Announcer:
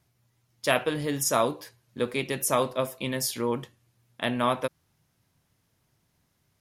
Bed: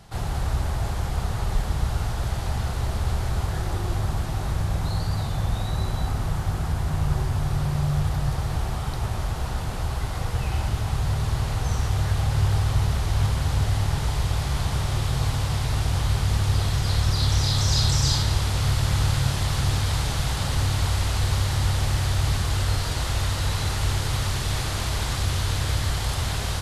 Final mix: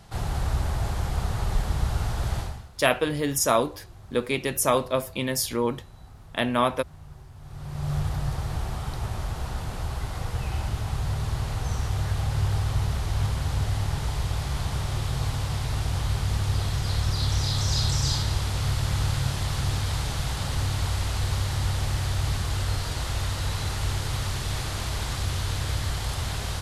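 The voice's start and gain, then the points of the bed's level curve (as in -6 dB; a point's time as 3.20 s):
2.15 s, +2.5 dB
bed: 2.40 s -1 dB
2.70 s -21.5 dB
7.36 s -21.5 dB
7.92 s -3.5 dB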